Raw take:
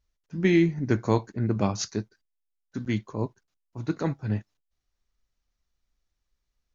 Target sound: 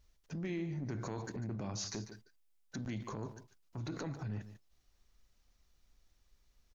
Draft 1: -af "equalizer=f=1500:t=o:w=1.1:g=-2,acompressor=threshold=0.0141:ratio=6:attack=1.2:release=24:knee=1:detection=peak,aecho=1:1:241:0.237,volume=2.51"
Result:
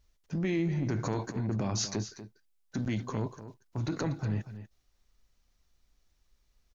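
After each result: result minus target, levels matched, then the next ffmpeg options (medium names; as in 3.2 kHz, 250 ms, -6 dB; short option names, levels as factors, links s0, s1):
echo 95 ms late; compression: peak gain reduction -8.5 dB
-af "equalizer=f=1500:t=o:w=1.1:g=-2,acompressor=threshold=0.0141:ratio=6:attack=1.2:release=24:knee=1:detection=peak,aecho=1:1:146:0.237,volume=2.51"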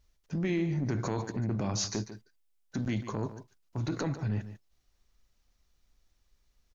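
compression: peak gain reduction -8.5 dB
-af "equalizer=f=1500:t=o:w=1.1:g=-2,acompressor=threshold=0.00422:ratio=6:attack=1.2:release=24:knee=1:detection=peak,aecho=1:1:146:0.237,volume=2.51"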